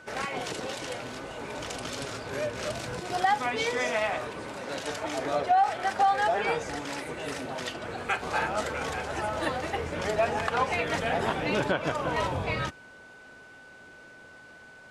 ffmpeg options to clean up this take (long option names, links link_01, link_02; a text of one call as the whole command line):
ffmpeg -i in.wav -af "bandreject=frequency=1500:width=30" out.wav